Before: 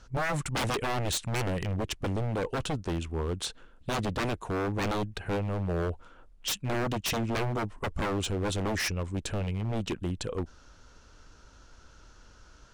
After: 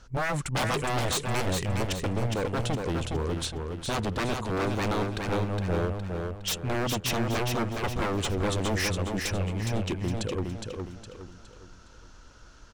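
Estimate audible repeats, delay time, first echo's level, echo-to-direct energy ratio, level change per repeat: 4, 0.413 s, -4.5 dB, -4.0 dB, -8.0 dB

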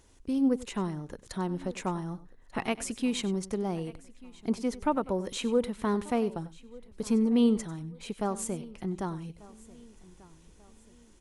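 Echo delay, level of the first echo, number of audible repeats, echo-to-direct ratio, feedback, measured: 96 ms, -17.0 dB, 3, -15.5 dB, no steady repeat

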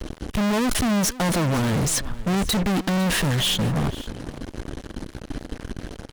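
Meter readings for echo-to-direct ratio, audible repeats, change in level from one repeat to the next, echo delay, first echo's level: -18.0 dB, 1, no steady repeat, 0.504 s, -18.0 dB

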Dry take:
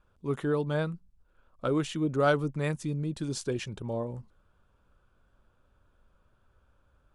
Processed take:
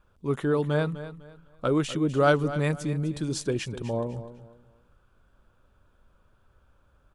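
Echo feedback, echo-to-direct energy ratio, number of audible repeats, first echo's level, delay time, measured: 29%, -13.0 dB, 3, -13.5 dB, 0.251 s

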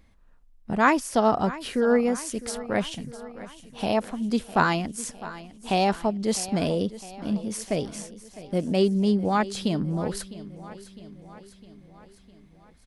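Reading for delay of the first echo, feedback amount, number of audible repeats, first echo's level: 0.656 s, 58%, 4, -16.5 dB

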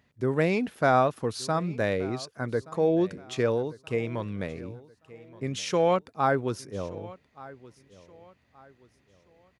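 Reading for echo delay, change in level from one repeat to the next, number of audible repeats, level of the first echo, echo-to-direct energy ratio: 1.175 s, -9.5 dB, 2, -20.0 dB, -19.5 dB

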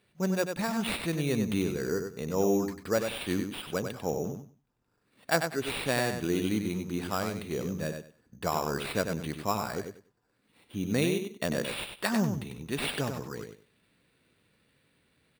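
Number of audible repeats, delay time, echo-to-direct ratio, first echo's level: 3, 96 ms, -6.5 dB, -6.5 dB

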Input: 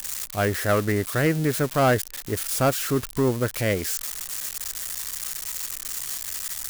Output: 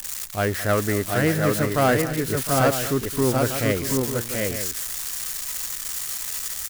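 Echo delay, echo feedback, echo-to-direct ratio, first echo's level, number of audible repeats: 0.216 s, no steady repeat, -2.0 dB, -15.5 dB, 3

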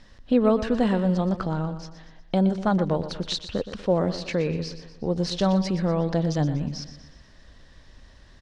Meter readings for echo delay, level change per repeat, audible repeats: 0.121 s, -6.5 dB, 4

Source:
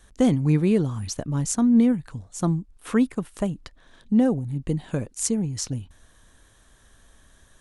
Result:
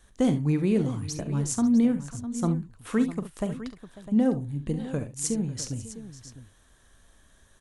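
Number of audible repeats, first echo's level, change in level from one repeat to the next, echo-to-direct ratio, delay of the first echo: 3, -12.5 dB, no steady repeat, -8.0 dB, 42 ms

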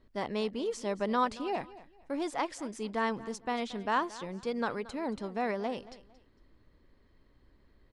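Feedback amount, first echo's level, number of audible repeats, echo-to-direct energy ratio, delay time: 28%, -18.0 dB, 2, -17.5 dB, 0.227 s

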